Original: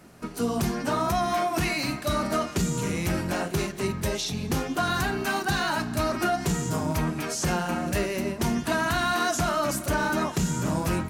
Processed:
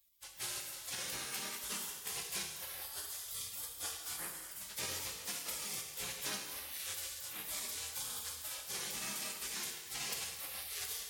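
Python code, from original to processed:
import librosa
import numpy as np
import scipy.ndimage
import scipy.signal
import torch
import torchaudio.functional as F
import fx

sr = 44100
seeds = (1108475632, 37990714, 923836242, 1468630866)

y = fx.highpass(x, sr, hz=1500.0, slope=6)
y = fx.spec_gate(y, sr, threshold_db=-25, keep='weak')
y = fx.rider(y, sr, range_db=4, speed_s=0.5)
y = fx.rev_gated(y, sr, seeds[0], gate_ms=460, shape='falling', drr_db=2.0)
y = y * 10.0 ** (4.5 / 20.0)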